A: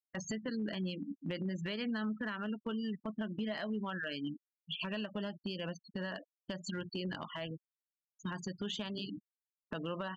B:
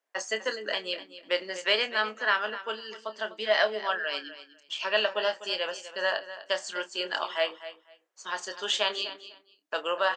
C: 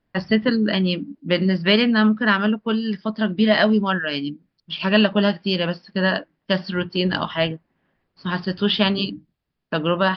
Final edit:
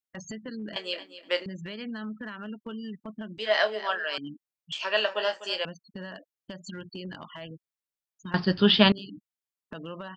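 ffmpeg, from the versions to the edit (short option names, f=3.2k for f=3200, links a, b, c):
-filter_complex "[1:a]asplit=3[a][b][c];[0:a]asplit=5[d][e][f][g][h];[d]atrim=end=0.762[i];[a]atrim=start=0.758:end=1.462[j];[e]atrim=start=1.458:end=3.382[k];[b]atrim=start=3.378:end=4.182[l];[f]atrim=start=4.178:end=4.722[m];[c]atrim=start=4.718:end=5.652[n];[g]atrim=start=5.648:end=8.342[o];[2:a]atrim=start=8.338:end=8.922[p];[h]atrim=start=8.918[q];[i][j]acrossfade=d=0.004:c1=hsin:c2=hsin[r];[r][k]acrossfade=d=0.004:c1=hsin:c2=hsin[s];[s][l]acrossfade=d=0.004:c1=hsin:c2=hsin[t];[t][m]acrossfade=d=0.004:c1=hsin:c2=hsin[u];[u][n]acrossfade=d=0.004:c1=hsin:c2=hsin[v];[v][o]acrossfade=d=0.004:c1=hsin:c2=hsin[w];[w][p]acrossfade=d=0.004:c1=hsin:c2=hsin[x];[x][q]acrossfade=d=0.004:c1=hsin:c2=hsin"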